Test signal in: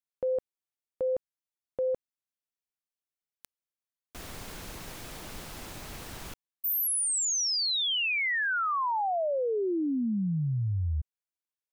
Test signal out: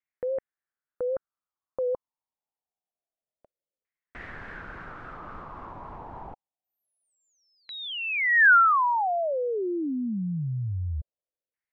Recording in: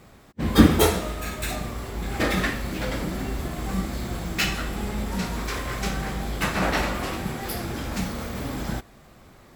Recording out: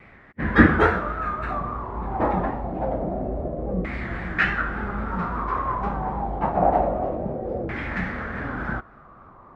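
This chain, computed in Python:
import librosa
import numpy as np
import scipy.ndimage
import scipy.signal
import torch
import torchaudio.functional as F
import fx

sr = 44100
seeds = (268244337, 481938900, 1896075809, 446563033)

y = fx.filter_lfo_lowpass(x, sr, shape='saw_down', hz=0.26, low_hz=510.0, high_hz=2100.0, q=5.2)
y = fx.vibrato(y, sr, rate_hz=3.6, depth_cents=69.0)
y = y * 10.0 ** (-1.0 / 20.0)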